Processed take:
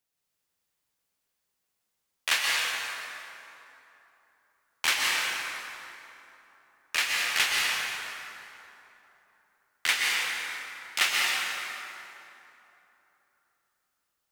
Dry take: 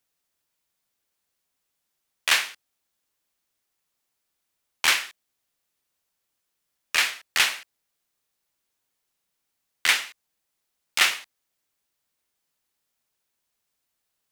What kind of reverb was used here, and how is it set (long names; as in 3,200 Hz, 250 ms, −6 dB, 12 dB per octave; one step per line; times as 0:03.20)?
dense smooth reverb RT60 3.2 s, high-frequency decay 0.6×, pre-delay 110 ms, DRR −3 dB
level −5.5 dB